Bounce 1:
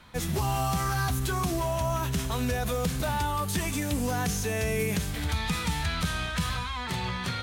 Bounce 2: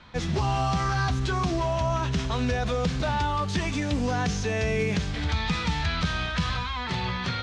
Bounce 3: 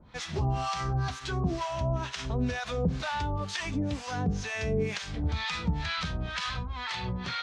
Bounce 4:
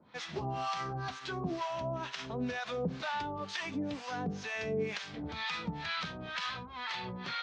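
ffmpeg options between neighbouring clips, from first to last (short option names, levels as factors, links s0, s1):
-af "lowpass=f=5700:w=0.5412,lowpass=f=5700:w=1.3066,volume=1.33"
-filter_complex "[0:a]acrossover=split=750[s0][s1];[s0]aeval=exprs='val(0)*(1-1/2+1/2*cos(2*PI*2.1*n/s))':c=same[s2];[s1]aeval=exprs='val(0)*(1-1/2-1/2*cos(2*PI*2.1*n/s))':c=same[s3];[s2][s3]amix=inputs=2:normalize=0"
-af "highpass=200,lowpass=5100,volume=0.708"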